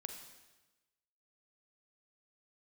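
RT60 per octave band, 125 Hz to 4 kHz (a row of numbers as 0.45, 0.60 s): 1.2, 1.2, 1.2, 1.1, 1.1, 1.1 s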